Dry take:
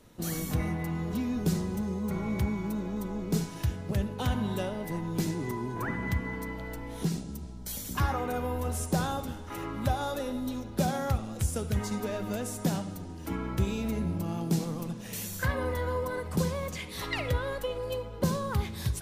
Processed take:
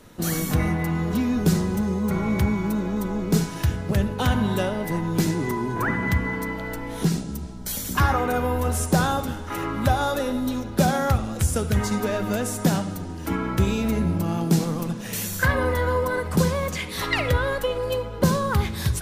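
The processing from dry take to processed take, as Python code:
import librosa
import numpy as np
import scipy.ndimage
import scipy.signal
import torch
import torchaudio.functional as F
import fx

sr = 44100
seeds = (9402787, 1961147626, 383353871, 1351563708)

y = fx.peak_eq(x, sr, hz=1500.0, db=3.5, octaves=0.77)
y = fx.hum_notches(y, sr, base_hz=60, count=2)
y = y * 10.0 ** (8.0 / 20.0)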